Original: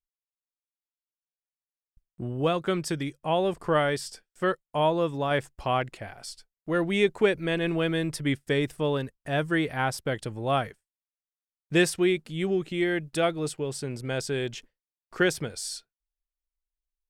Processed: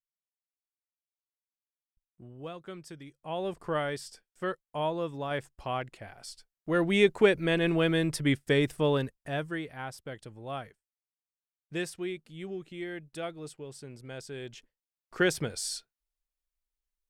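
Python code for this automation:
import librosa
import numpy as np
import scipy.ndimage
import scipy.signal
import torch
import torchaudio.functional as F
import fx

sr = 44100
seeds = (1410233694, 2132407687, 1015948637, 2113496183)

y = fx.gain(x, sr, db=fx.line((3.05, -16.0), (3.47, -7.0), (5.92, -7.0), (6.94, 0.5), (9.04, 0.5), (9.68, -12.0), (14.31, -12.0), (15.44, 0.0)))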